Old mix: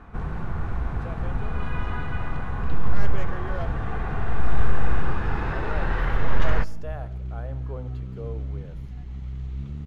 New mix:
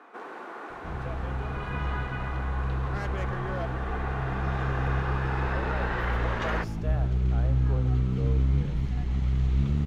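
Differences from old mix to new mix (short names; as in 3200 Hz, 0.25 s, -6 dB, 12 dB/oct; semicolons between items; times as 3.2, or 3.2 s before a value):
first sound: add steep high-pass 290 Hz 36 dB/oct; second sound +11.0 dB; master: add low shelf 150 Hz -4 dB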